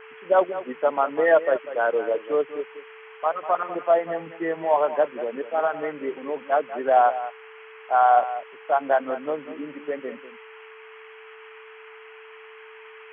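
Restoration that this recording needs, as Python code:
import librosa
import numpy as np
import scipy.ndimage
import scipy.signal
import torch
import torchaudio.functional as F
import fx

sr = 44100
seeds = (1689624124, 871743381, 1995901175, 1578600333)

y = fx.notch(x, sr, hz=440.0, q=30.0)
y = fx.noise_reduce(y, sr, print_start_s=11.99, print_end_s=12.49, reduce_db=22.0)
y = fx.fix_echo_inverse(y, sr, delay_ms=195, level_db=-13.0)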